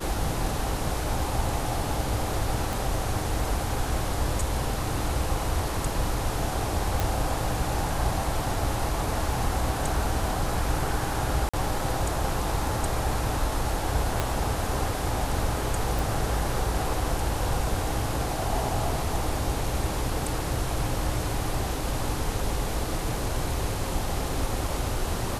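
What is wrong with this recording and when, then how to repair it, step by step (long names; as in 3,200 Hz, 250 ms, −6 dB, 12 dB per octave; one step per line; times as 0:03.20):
0:02.73: click
0:07.00: click
0:11.49–0:11.54: drop-out 45 ms
0:14.20: click −10 dBFS
0:15.99: click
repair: click removal
repair the gap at 0:11.49, 45 ms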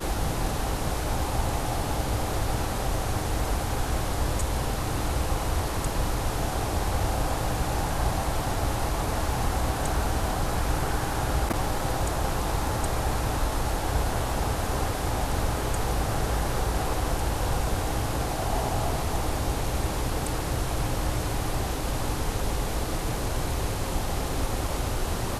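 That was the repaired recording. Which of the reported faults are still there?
0:14.20: click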